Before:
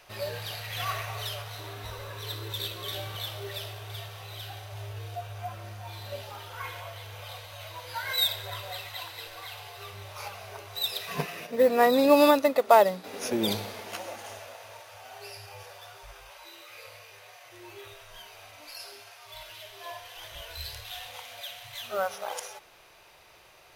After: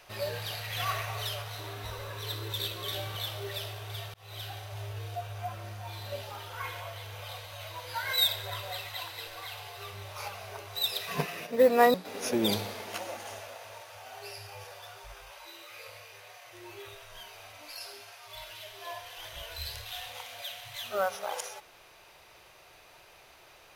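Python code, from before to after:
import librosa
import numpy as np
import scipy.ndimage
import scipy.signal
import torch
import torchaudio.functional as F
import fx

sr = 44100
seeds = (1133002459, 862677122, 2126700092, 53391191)

y = fx.edit(x, sr, fx.fade_in_span(start_s=4.14, length_s=0.25),
    fx.cut(start_s=11.94, length_s=0.99), tone=tone)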